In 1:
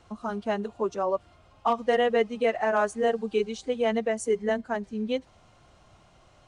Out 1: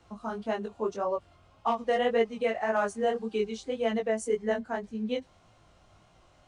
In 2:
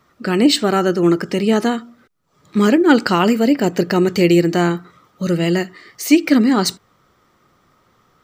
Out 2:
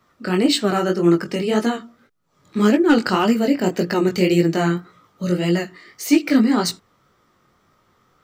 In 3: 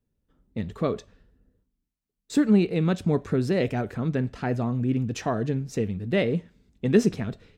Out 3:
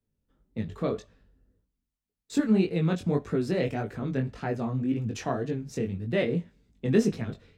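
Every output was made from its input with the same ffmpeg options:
-filter_complex "[0:a]acrossover=split=140[s0][s1];[s1]volume=1.58,asoftclip=hard,volume=0.631[s2];[s0][s2]amix=inputs=2:normalize=0,flanger=delay=17.5:depth=5.4:speed=1.8"

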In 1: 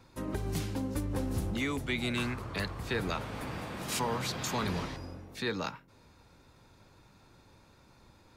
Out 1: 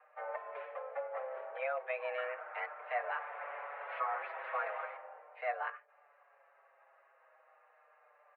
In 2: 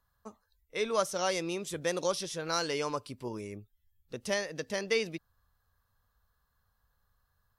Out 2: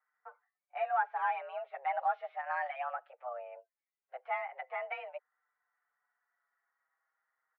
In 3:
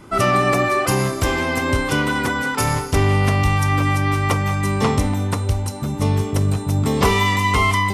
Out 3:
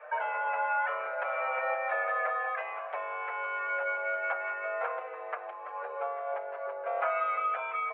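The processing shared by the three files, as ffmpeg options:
-filter_complex "[0:a]acompressor=threshold=0.0631:ratio=6,highpass=f=300:t=q:w=0.5412,highpass=f=300:t=q:w=1.307,lowpass=f=2000:t=q:w=0.5176,lowpass=f=2000:t=q:w=0.7071,lowpass=f=2000:t=q:w=1.932,afreqshift=260,asplit=2[s0][s1];[s1]adelay=6.1,afreqshift=-0.38[s2];[s0][s2]amix=inputs=2:normalize=1,volume=1.19"

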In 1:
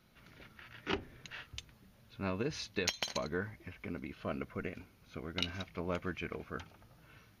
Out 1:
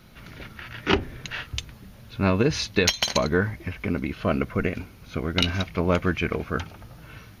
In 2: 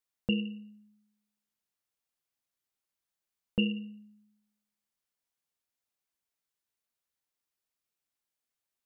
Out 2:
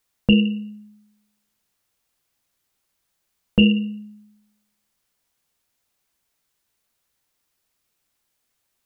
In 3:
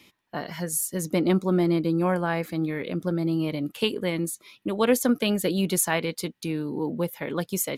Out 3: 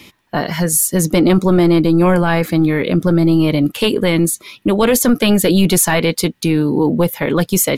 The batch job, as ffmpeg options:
-af "apsyclip=12.6,lowshelf=f=130:g=5.5,volume=0.398"

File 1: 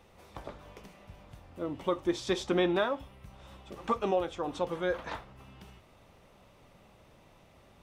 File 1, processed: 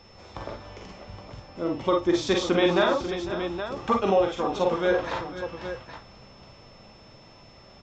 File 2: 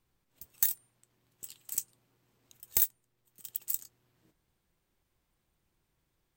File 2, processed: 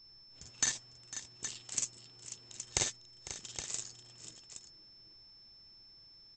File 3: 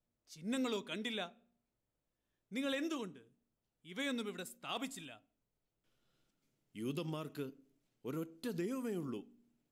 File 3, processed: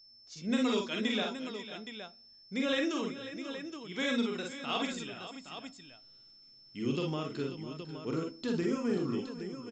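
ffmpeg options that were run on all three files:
-af "aecho=1:1:42|51|59|501|539|819:0.531|0.531|0.299|0.168|0.251|0.335,aeval=exprs='val(0)+0.000891*sin(2*PI*5300*n/s)':c=same,aresample=16000,aresample=44100,volume=1.88"

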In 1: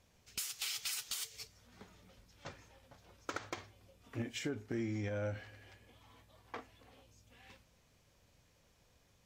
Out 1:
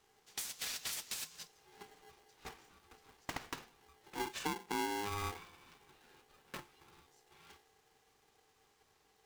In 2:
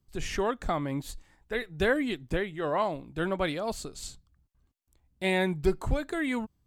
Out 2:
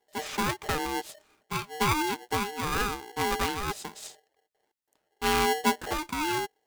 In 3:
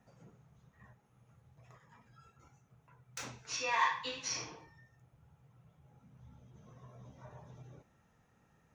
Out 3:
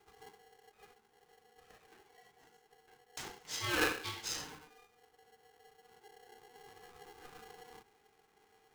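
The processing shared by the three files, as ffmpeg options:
-af "lowshelf=f=120:t=q:w=3:g=-11.5,aeval=exprs='val(0)*sgn(sin(2*PI*610*n/s))':c=same,volume=0.841"

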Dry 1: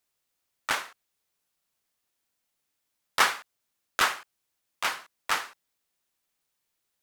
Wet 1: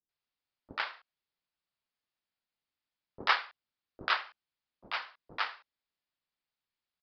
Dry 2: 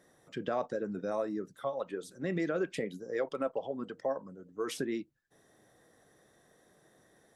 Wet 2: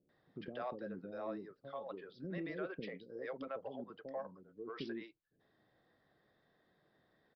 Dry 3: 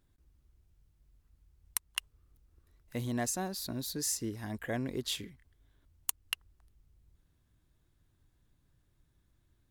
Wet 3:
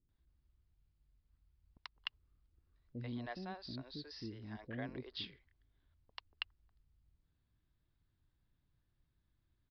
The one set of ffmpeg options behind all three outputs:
-filter_complex "[0:a]aeval=exprs='0.501*(cos(1*acos(clip(val(0)/0.501,-1,1)))-cos(1*PI/2))+0.0282*(cos(7*acos(clip(val(0)/0.501,-1,1)))-cos(7*PI/2))':c=same,aresample=11025,aresample=44100,acrossover=split=450[s0][s1];[s1]adelay=90[s2];[s0][s2]amix=inputs=2:normalize=0,volume=0.668"

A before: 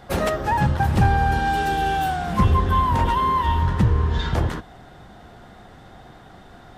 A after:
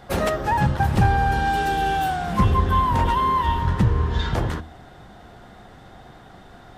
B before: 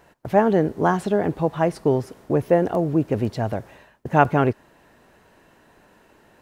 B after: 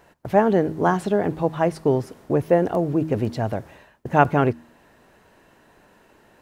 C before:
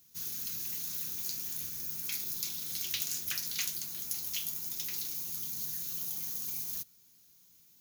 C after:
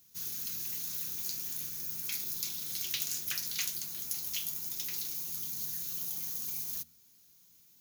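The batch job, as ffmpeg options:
-af "bandreject=f=79.08:t=h:w=4,bandreject=f=158.16:t=h:w=4,bandreject=f=237.24:t=h:w=4,bandreject=f=316.32:t=h:w=4"

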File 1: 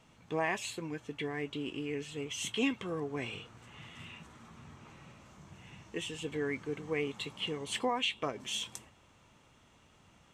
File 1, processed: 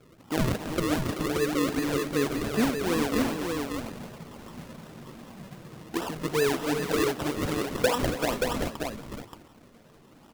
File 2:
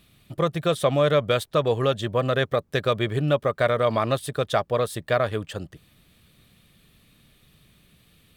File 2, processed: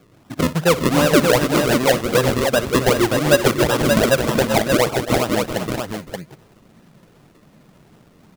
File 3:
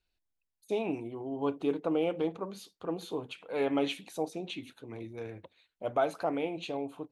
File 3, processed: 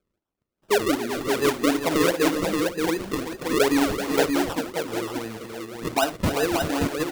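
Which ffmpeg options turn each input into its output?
-filter_complex "[0:a]afftfilt=real='re*pow(10,13/40*sin(2*PI*(0.59*log(max(b,1)*sr/1024/100)/log(2)-(-1.4)*(pts-256)/sr)))':imag='im*pow(10,13/40*sin(2*PI*(0.59*log(max(b,1)*sr/1024/100)/log(2)-(-1.4)*(pts-256)/sr)))':win_size=1024:overlap=0.75,highpass=190,highshelf=f=2300:g=-2.5,asplit=2[s0][s1];[s1]acompressor=threshold=0.0224:ratio=5,volume=0.75[s2];[s0][s2]amix=inputs=2:normalize=0,lowshelf=f=490:g=7.5,acrusher=samples=39:mix=1:aa=0.000001:lfo=1:lforange=39:lforate=2.6,asplit=2[s3][s4];[s4]aecho=0:1:58|279|383|396|578:0.158|0.237|0.335|0.15|0.596[s5];[s3][s5]amix=inputs=2:normalize=0,volume=0.891"

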